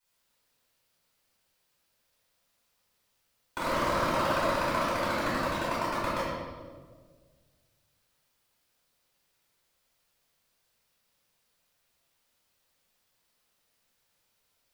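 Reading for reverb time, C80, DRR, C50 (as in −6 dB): 1.6 s, 0.0 dB, −13.5 dB, −2.5 dB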